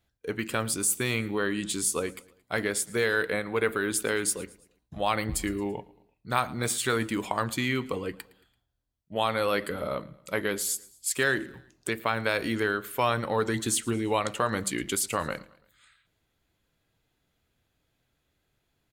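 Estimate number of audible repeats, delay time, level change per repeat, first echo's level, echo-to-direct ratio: 3, 0.112 s, -6.5 dB, -22.0 dB, -21.0 dB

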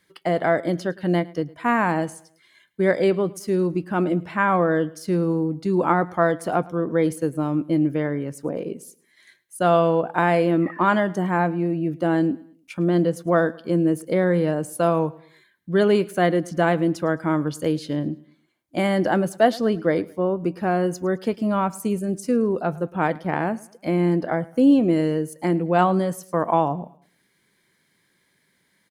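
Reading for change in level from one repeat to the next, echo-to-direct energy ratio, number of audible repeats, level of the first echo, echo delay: -8.5 dB, -21.5 dB, 2, -22.0 dB, 0.108 s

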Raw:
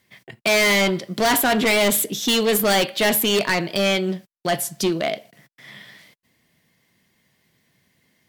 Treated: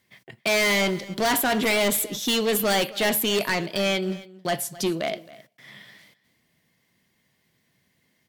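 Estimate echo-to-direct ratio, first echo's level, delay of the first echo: -19.5 dB, -19.5 dB, 0.267 s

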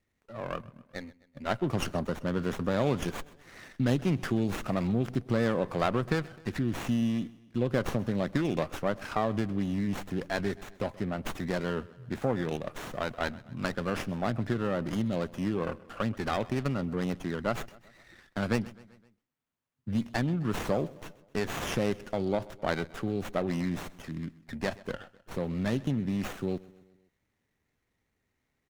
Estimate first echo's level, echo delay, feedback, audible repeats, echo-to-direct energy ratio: -21.0 dB, 0.129 s, 55%, 3, -19.5 dB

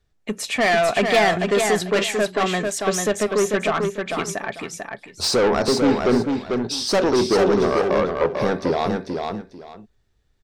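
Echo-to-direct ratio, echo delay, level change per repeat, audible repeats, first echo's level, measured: -4.5 dB, 0.444 s, -13.0 dB, 2, -4.5 dB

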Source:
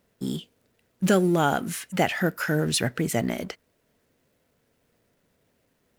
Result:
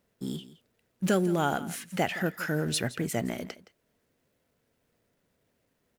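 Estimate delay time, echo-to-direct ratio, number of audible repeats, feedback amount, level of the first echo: 0.168 s, -17.0 dB, 1, no steady repeat, -17.0 dB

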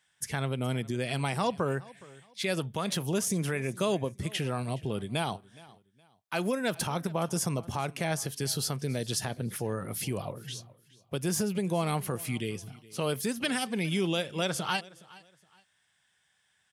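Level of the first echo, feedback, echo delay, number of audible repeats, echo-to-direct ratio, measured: -21.5 dB, 28%, 0.417 s, 2, -21.0 dB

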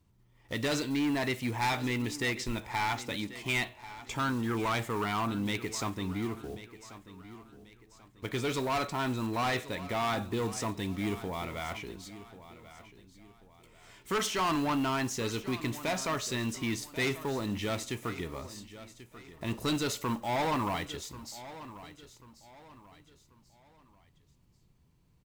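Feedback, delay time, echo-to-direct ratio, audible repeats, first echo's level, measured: 36%, 1.088 s, -15.0 dB, 3, -15.5 dB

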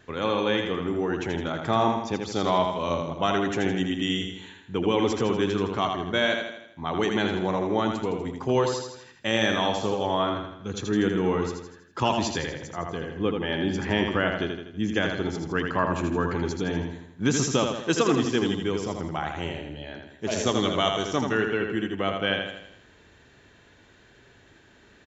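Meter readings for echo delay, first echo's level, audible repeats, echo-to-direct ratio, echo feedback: 81 ms, -5.0 dB, 5, -4.0 dB, 50%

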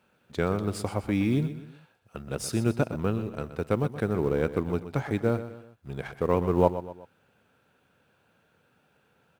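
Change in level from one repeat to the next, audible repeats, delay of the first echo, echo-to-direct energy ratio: -7.5 dB, 3, 0.124 s, -11.5 dB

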